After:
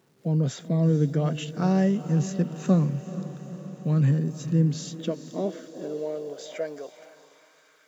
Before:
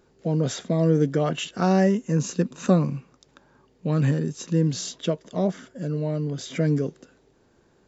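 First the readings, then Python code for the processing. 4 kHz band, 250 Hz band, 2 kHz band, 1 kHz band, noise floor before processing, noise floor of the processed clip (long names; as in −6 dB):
−6.0 dB, −1.5 dB, −6.0 dB, −5.5 dB, −62 dBFS, −60 dBFS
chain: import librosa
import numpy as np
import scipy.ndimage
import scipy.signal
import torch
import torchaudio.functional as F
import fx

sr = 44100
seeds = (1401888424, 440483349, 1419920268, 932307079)

y = fx.quant_dither(x, sr, seeds[0], bits=10, dither='none')
y = fx.echo_diffused(y, sr, ms=451, feedback_pct=63, wet_db=-13.0)
y = fx.filter_sweep_highpass(y, sr, from_hz=140.0, to_hz=1300.0, start_s=4.41, end_s=7.79, q=2.5)
y = y * librosa.db_to_amplitude(-6.5)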